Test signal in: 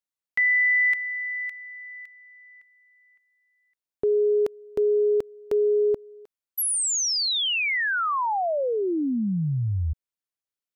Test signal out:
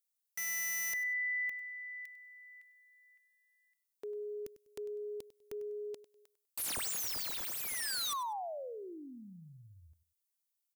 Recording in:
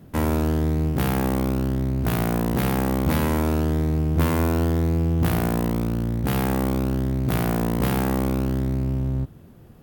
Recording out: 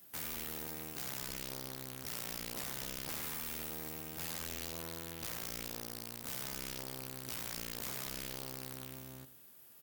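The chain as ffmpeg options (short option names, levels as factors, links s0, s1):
-filter_complex "[0:a]aderivative,acrossover=split=3000[s0][s1];[s1]acompressor=threshold=0.0112:ratio=4:attack=1:release=60[s2];[s0][s2]amix=inputs=2:normalize=0,aeval=exprs='(mod(75*val(0)+1,2)-1)/75':c=same,asplit=2[s3][s4];[s4]aecho=0:1:99|198:0.168|0.0403[s5];[s3][s5]amix=inputs=2:normalize=0,volume=1.68"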